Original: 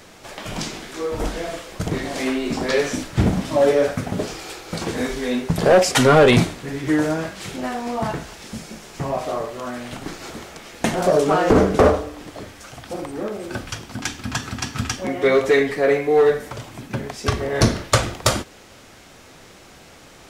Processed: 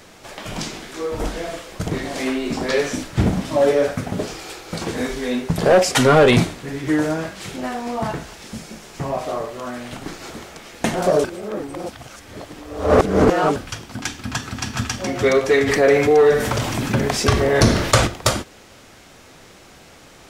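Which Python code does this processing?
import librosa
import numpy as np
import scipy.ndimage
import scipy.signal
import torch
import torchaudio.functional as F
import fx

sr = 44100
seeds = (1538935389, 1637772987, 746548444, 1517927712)

y = fx.echo_throw(x, sr, start_s=14.13, length_s=0.77, ms=420, feedback_pct=60, wet_db=-4.5)
y = fx.env_flatten(y, sr, amount_pct=50, at=(15.66, 18.06), fade=0.02)
y = fx.edit(y, sr, fx.reverse_span(start_s=11.24, length_s=2.32), tone=tone)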